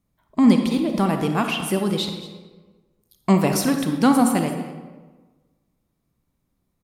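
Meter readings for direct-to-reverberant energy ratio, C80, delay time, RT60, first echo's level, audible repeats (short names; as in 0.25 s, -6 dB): 5.0 dB, 7.5 dB, 0.222 s, 1.3 s, -16.0 dB, 1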